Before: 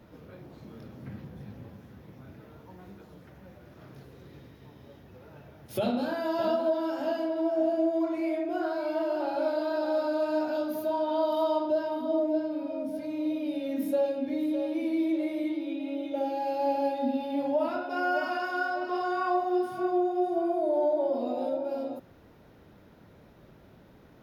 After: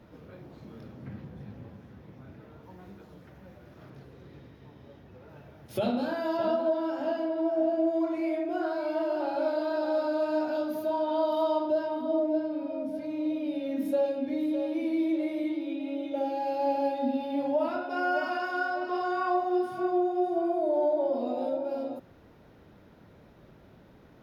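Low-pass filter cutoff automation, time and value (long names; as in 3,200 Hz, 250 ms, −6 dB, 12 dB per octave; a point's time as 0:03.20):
low-pass filter 6 dB per octave
6,900 Hz
from 0:00.92 4,100 Hz
from 0:02.63 8,600 Hz
from 0:03.90 3,900 Hz
from 0:05.29 7,300 Hz
from 0:06.37 3,100 Hz
from 0:07.87 7,200 Hz
from 0:11.86 4,300 Hz
from 0:13.85 7,700 Hz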